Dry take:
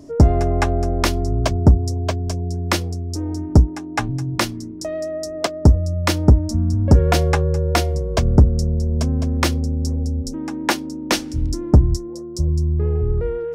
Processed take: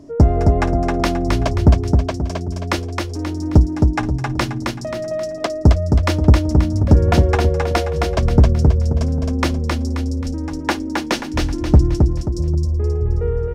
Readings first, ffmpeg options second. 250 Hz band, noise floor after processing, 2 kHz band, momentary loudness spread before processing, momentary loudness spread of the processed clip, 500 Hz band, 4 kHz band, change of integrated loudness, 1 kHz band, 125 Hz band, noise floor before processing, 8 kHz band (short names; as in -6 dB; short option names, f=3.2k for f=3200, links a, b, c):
+2.0 dB, -27 dBFS, +1.0 dB, 10 LU, 10 LU, +2.0 dB, -1.5 dB, +1.5 dB, +1.5 dB, +1.5 dB, -31 dBFS, -4.0 dB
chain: -af "highshelf=f=5.6k:g=-10,aecho=1:1:266|532|798|1064|1330:0.668|0.274|0.112|0.0461|0.0189"